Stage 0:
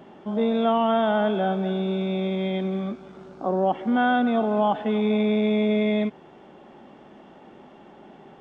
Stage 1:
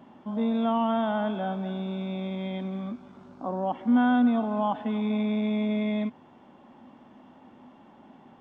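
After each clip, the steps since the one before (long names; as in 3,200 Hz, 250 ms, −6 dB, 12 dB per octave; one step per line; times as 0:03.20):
thirty-one-band graphic EQ 100 Hz +10 dB, 250 Hz +10 dB, 400 Hz −7 dB, 1,000 Hz +7 dB
level −7 dB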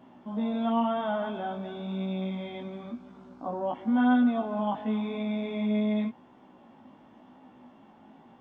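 chorus effect 0.94 Hz, delay 15.5 ms, depth 3.6 ms
level +1 dB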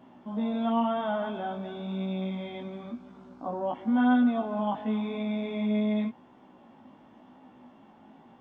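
no processing that can be heard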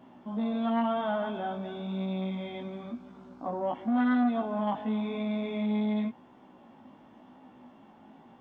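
saturating transformer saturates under 530 Hz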